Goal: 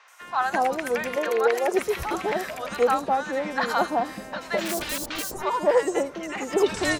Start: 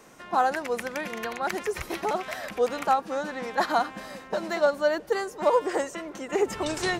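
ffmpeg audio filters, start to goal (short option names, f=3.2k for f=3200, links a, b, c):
-filter_complex "[0:a]asettb=1/sr,asplit=3[a][b][c];[a]atrim=end=0.954[d];[b]atrim=start=0.95:end=1.58,asetpts=PTS-STARTPTS,afade=t=in:d=0.004:c=qsin,afade=t=out:st=0.626:d=0.004:c=qsin,highpass=f=440:t=q:w=5.1[e];[c]atrim=start=1.576[f];[d][e]acrossfade=d=0.004:c1=hsin:c2=qsin[g];[g][f]acrossfade=d=0.004:c1=qsin:c2=hsin,asplit=3[h][i][j];[h]afade=t=out:st=4.57:d=0.02[k];[i]aeval=exprs='(mod(23.7*val(0)+1,2)-1)/23.7':c=same,afade=t=in:st=4.57:d=0.02,afade=t=out:st=5.22:d=0.02[l];[j]afade=t=in:st=5.22:d=0.02[m];[k][l][m]amix=inputs=3:normalize=0,acrossover=split=850|4800[n][o][p];[p]adelay=80[q];[n]adelay=210[r];[r][o][q]amix=inputs=3:normalize=0,volume=4dB"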